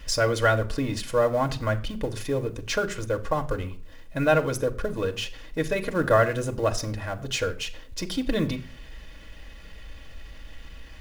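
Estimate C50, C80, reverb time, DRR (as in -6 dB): 17.0 dB, 20.0 dB, no single decay rate, 4.5 dB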